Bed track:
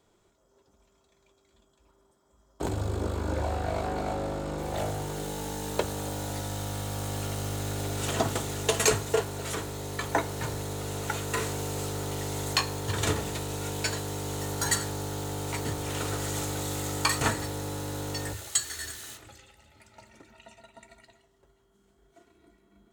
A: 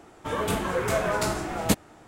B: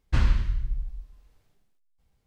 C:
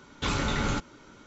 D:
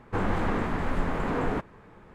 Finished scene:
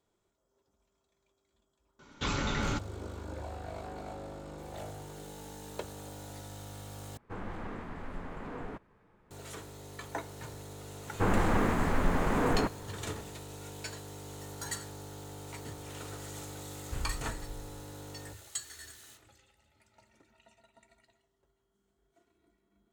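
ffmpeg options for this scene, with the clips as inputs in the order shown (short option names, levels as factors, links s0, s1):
-filter_complex "[4:a]asplit=2[s0][s1];[0:a]volume=0.266,asplit=2[s2][s3];[s2]atrim=end=7.174[s4];[s0]atrim=end=2.14,asetpts=PTS-STARTPTS,volume=0.211[s5];[s3]atrim=start=9.306[s6];[3:a]atrim=end=1.26,asetpts=PTS-STARTPTS,volume=0.631,afade=t=in:d=0.004:c=hsin,afade=t=out:st=1.256:d=0.004:c=hsin,adelay=1990[s7];[s1]atrim=end=2.14,asetpts=PTS-STARTPTS,afade=t=in:d=0.004:c=hsin,afade=t=out:st=2.136:d=0.004:c=hsin,adelay=11070[s8];[2:a]atrim=end=2.26,asetpts=PTS-STARTPTS,volume=0.158,afade=t=in:d=0.004:c=hsin,afade=t=out:st=2.256:d=0.004:c=hsin,adelay=16790[s9];[s4][s5]acrossfade=d=0.004:c1=hsin:c2=hsin[s10];[s10][s6]acrossfade=d=0.004:c1=hsin:c2=hsin[s11];[s11][s7][s8][s9]amix=inputs=4:normalize=0"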